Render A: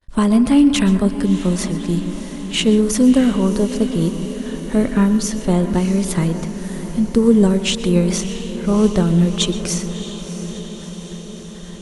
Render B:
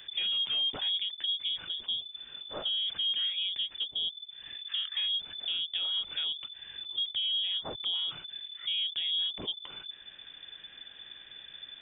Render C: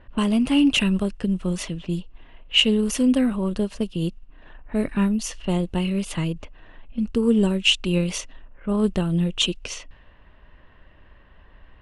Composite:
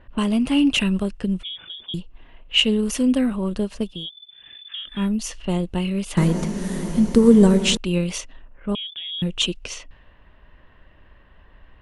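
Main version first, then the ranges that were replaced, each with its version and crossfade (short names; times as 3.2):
C
1.43–1.94 from B
3.95–4.97 from B, crossfade 0.24 s
6.17–7.77 from A
8.75–9.22 from B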